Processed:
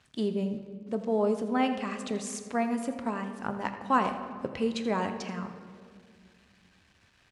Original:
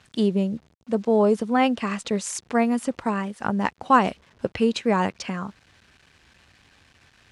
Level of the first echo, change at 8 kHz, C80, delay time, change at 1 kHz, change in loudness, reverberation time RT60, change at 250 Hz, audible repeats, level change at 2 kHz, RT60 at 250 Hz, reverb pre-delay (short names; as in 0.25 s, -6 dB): -14.5 dB, -7.5 dB, 9.0 dB, 83 ms, -7.0 dB, -7.5 dB, 2.1 s, -7.5 dB, 1, -7.5 dB, 2.8 s, 3 ms